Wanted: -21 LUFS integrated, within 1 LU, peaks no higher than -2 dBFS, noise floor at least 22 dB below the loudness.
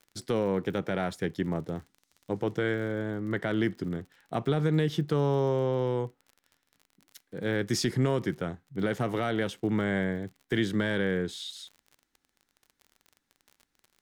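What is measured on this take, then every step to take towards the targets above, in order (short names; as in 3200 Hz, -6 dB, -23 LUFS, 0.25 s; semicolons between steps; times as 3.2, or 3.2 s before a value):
ticks 36/s; loudness -30.0 LUFS; peak -16.0 dBFS; loudness target -21.0 LUFS
-> de-click; gain +9 dB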